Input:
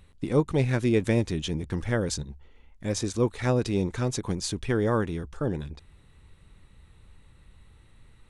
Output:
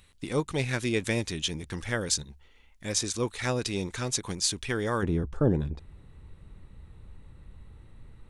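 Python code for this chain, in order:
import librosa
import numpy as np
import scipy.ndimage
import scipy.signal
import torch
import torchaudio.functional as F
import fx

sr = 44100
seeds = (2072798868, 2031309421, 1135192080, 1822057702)

y = fx.tilt_shelf(x, sr, db=fx.steps((0.0, -6.5), (5.02, 5.5)), hz=1300.0)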